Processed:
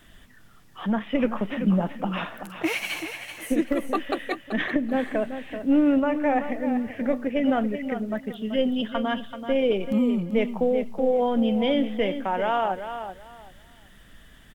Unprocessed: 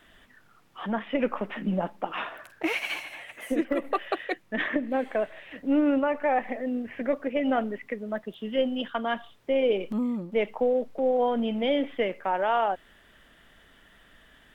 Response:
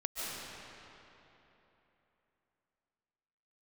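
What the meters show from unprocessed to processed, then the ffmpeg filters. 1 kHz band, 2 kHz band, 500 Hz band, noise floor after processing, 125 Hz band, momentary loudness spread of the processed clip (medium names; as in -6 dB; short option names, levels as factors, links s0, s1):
+0.5 dB, +1.0 dB, +1.5 dB, -51 dBFS, +7.5 dB, 9 LU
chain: -af "bass=f=250:g=10,treble=f=4000:g=8,aecho=1:1:383|766|1149:0.335|0.0737|0.0162"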